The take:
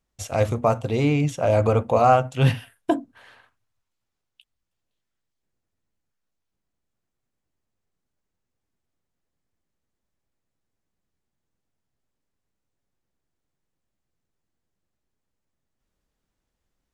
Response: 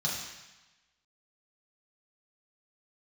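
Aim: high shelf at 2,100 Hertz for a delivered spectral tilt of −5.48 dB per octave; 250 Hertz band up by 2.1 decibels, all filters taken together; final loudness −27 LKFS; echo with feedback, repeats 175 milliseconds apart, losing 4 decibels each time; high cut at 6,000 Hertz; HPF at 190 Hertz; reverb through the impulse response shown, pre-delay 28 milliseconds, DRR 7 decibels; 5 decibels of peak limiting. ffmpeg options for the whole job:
-filter_complex "[0:a]highpass=190,lowpass=6000,equalizer=frequency=250:width_type=o:gain=4.5,highshelf=frequency=2100:gain=-7.5,alimiter=limit=-11.5dB:level=0:latency=1,aecho=1:1:175|350|525|700|875|1050|1225|1400|1575:0.631|0.398|0.25|0.158|0.0994|0.0626|0.0394|0.0249|0.0157,asplit=2[link_01][link_02];[1:a]atrim=start_sample=2205,adelay=28[link_03];[link_02][link_03]afir=irnorm=-1:irlink=0,volume=-13.5dB[link_04];[link_01][link_04]amix=inputs=2:normalize=0,volume=-6dB"

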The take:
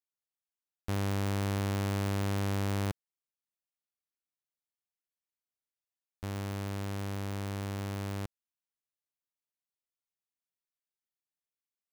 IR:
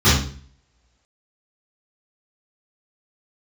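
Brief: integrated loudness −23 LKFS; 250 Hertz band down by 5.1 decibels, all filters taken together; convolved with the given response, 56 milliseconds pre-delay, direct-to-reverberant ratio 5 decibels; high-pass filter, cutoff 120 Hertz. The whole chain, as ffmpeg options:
-filter_complex "[0:a]highpass=120,equalizer=frequency=250:width_type=o:gain=-6.5,asplit=2[link_01][link_02];[1:a]atrim=start_sample=2205,adelay=56[link_03];[link_02][link_03]afir=irnorm=-1:irlink=0,volume=-28dB[link_04];[link_01][link_04]amix=inputs=2:normalize=0,volume=7dB"

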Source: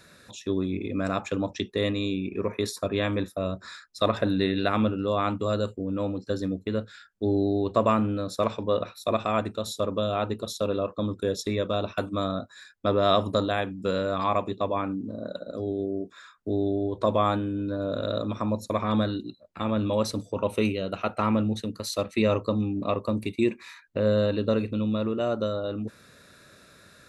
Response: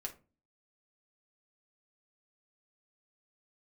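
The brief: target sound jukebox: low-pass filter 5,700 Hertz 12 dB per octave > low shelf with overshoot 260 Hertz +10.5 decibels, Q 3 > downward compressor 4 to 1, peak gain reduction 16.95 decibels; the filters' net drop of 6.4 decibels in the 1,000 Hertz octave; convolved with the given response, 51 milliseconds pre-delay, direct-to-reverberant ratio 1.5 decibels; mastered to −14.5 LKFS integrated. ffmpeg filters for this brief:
-filter_complex "[0:a]equalizer=frequency=1000:width_type=o:gain=-7.5,asplit=2[link_01][link_02];[1:a]atrim=start_sample=2205,adelay=51[link_03];[link_02][link_03]afir=irnorm=-1:irlink=0,volume=0dB[link_04];[link_01][link_04]amix=inputs=2:normalize=0,lowpass=5700,lowshelf=frequency=260:width_type=q:width=3:gain=10.5,acompressor=threshold=-24dB:ratio=4,volume=12dB"

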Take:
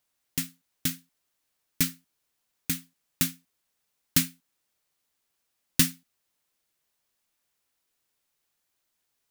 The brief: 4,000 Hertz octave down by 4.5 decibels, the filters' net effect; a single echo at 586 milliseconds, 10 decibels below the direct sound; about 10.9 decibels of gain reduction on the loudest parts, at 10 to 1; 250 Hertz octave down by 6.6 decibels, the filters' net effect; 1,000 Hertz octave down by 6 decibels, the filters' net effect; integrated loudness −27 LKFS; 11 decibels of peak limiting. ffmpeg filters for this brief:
ffmpeg -i in.wav -af "equalizer=frequency=250:width_type=o:gain=-8.5,equalizer=frequency=1000:width_type=o:gain=-8,equalizer=frequency=4000:width_type=o:gain=-5.5,acompressor=threshold=-29dB:ratio=10,alimiter=limit=-19dB:level=0:latency=1,aecho=1:1:586:0.316,volume=16.5dB" out.wav

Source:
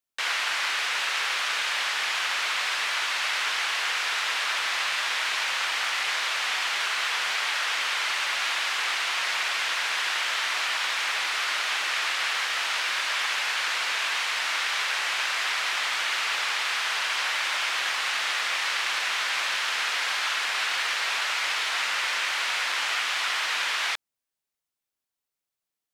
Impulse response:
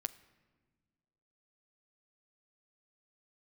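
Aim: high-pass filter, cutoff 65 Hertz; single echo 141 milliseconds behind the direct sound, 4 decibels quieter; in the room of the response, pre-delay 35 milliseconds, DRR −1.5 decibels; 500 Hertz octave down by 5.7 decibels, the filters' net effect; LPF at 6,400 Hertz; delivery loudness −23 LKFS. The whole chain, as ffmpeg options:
-filter_complex "[0:a]highpass=65,lowpass=6400,equalizer=frequency=500:width_type=o:gain=-8,aecho=1:1:141:0.631,asplit=2[link_01][link_02];[1:a]atrim=start_sample=2205,adelay=35[link_03];[link_02][link_03]afir=irnorm=-1:irlink=0,volume=2.5dB[link_04];[link_01][link_04]amix=inputs=2:normalize=0,volume=-2.5dB"

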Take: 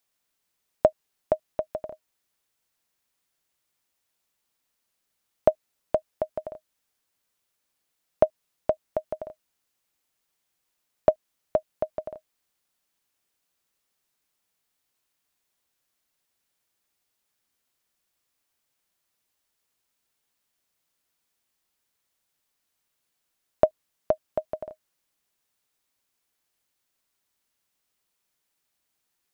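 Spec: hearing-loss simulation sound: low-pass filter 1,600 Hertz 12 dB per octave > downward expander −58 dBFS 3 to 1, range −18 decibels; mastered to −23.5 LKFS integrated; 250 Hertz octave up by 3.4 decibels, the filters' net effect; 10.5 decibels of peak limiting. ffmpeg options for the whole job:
ffmpeg -i in.wav -af "equalizer=frequency=250:width_type=o:gain=4.5,alimiter=limit=-14dB:level=0:latency=1,lowpass=1600,agate=range=-18dB:threshold=-58dB:ratio=3,volume=11.5dB" out.wav

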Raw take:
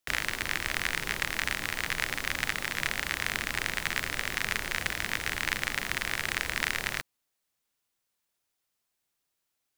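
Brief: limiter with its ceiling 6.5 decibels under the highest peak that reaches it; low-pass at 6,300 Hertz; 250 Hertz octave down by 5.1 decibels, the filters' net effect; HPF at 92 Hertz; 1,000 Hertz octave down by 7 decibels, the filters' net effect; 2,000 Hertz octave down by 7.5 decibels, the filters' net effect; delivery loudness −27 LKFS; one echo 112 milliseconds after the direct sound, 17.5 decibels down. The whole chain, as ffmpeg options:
ffmpeg -i in.wav -af "highpass=92,lowpass=6300,equalizer=frequency=250:width_type=o:gain=-6.5,equalizer=frequency=1000:width_type=o:gain=-6.5,equalizer=frequency=2000:width_type=o:gain=-7,alimiter=limit=-19.5dB:level=0:latency=1,aecho=1:1:112:0.133,volume=12dB" out.wav

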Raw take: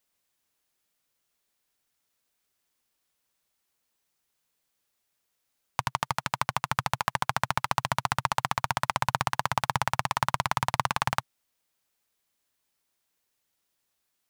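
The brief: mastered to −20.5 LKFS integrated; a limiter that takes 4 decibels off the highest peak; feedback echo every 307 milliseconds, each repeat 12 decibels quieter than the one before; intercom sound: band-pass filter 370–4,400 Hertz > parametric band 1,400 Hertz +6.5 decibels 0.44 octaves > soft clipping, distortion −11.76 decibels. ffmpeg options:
ffmpeg -i in.wav -af "alimiter=limit=-8.5dB:level=0:latency=1,highpass=370,lowpass=4400,equalizer=frequency=1400:width_type=o:width=0.44:gain=6.5,aecho=1:1:307|614|921:0.251|0.0628|0.0157,asoftclip=threshold=-16dB,volume=13dB" out.wav

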